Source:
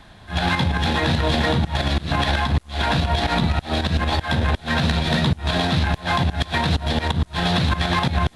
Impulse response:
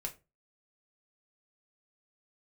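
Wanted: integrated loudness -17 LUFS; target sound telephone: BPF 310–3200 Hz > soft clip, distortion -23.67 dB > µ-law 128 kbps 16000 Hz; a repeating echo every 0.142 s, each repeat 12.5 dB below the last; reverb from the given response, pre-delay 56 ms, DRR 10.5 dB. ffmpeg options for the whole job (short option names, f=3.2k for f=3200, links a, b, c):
-filter_complex "[0:a]aecho=1:1:142|284|426:0.237|0.0569|0.0137,asplit=2[a][b];[1:a]atrim=start_sample=2205,adelay=56[c];[b][c]afir=irnorm=-1:irlink=0,volume=-10dB[d];[a][d]amix=inputs=2:normalize=0,highpass=310,lowpass=3.2k,asoftclip=threshold=-12.5dB,volume=8dB" -ar 16000 -c:a pcm_mulaw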